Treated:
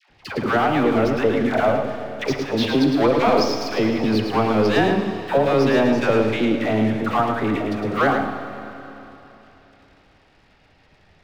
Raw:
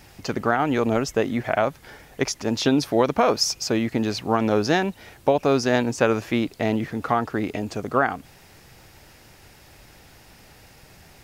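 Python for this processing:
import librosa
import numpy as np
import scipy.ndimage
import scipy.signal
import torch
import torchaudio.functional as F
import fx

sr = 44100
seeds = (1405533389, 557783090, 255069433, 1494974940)

p1 = scipy.signal.sosfilt(scipy.signal.butter(4, 4100.0, 'lowpass', fs=sr, output='sos'), x)
p2 = fx.hum_notches(p1, sr, base_hz=60, count=2)
p3 = fx.leveller(p2, sr, passes=2)
p4 = fx.dispersion(p3, sr, late='lows', ms=99.0, hz=730.0)
p5 = p4 + fx.echo_single(p4, sr, ms=109, db=-6.0, dry=0)
p6 = fx.rev_schroeder(p5, sr, rt60_s=3.3, comb_ms=29, drr_db=7.5)
y = p6 * librosa.db_to_amplitude(-4.0)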